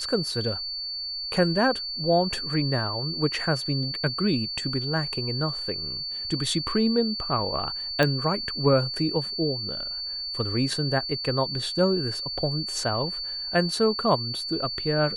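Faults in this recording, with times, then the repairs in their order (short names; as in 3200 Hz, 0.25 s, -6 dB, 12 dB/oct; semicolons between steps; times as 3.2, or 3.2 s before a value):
tone 4500 Hz -30 dBFS
8.03 pop -9 dBFS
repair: de-click; notch 4500 Hz, Q 30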